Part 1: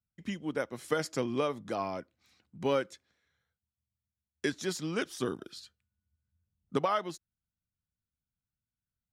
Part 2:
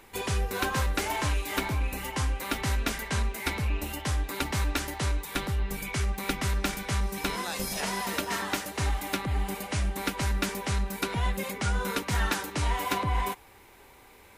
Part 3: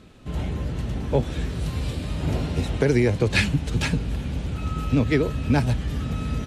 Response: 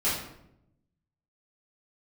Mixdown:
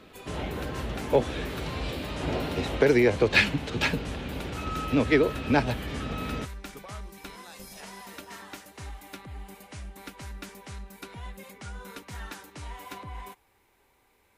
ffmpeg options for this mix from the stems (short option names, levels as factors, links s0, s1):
-filter_complex "[0:a]volume=0.141[s0];[1:a]volume=0.237[s1];[2:a]acrossover=split=280 5000:gain=0.224 1 0.224[s2][s3][s4];[s2][s3][s4]amix=inputs=3:normalize=0,volume=1.33[s5];[s0][s1][s5]amix=inputs=3:normalize=0"